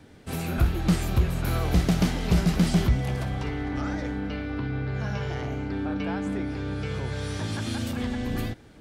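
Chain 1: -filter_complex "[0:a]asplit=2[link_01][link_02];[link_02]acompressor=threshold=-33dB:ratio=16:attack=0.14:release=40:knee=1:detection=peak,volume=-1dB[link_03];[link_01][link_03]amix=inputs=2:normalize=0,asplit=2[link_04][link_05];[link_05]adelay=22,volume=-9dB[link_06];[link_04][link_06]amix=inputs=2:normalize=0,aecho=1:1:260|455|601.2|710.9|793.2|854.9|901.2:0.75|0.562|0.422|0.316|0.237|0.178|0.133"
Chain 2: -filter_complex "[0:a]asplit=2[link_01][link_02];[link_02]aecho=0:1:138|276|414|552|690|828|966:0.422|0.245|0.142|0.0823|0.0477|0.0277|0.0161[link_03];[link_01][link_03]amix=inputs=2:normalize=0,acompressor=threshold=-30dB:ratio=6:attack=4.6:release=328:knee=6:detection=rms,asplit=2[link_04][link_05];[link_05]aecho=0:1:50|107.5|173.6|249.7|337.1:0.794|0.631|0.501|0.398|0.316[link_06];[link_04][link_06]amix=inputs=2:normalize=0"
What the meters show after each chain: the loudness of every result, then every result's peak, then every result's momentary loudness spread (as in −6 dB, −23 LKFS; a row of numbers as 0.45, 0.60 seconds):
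−22.0, −32.0 LKFS; −5.0, −19.0 dBFS; 9, 4 LU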